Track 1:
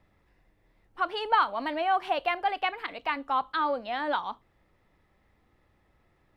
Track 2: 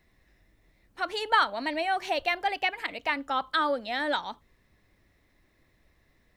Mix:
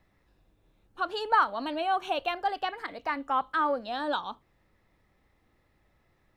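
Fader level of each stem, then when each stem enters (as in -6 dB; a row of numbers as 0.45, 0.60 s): -2.5, -8.5 dB; 0.00, 0.00 s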